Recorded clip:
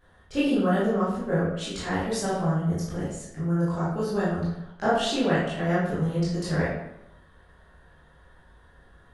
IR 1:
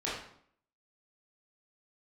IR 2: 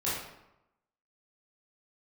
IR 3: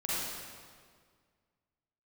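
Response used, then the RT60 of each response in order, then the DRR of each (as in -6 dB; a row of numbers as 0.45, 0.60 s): 2; 0.60, 0.90, 1.9 s; -8.5, -10.0, -9.0 dB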